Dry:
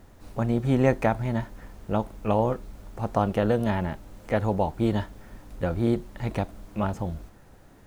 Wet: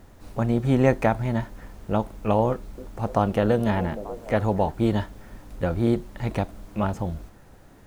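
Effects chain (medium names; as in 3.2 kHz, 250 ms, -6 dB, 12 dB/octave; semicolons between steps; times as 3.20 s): 2.48–4.72 s: repeats whose band climbs or falls 296 ms, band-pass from 330 Hz, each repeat 0.7 oct, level -10 dB; trim +2 dB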